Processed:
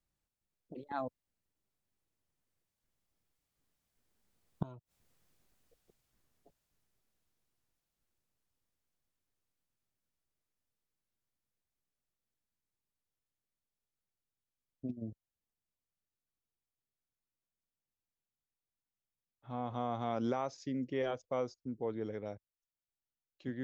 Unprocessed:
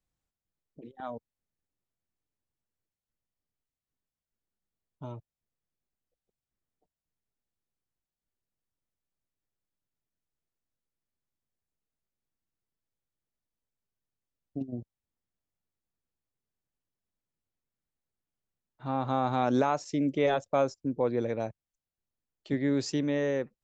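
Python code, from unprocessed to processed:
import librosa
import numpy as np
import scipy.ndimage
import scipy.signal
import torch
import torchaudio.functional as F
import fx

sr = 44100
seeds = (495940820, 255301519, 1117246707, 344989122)

y = fx.doppler_pass(x, sr, speed_mps=29, closest_m=22.0, pass_at_s=5.21)
y = fx.gate_flip(y, sr, shuts_db=-39.0, range_db=-25)
y = y * librosa.db_to_amplitude(16.5)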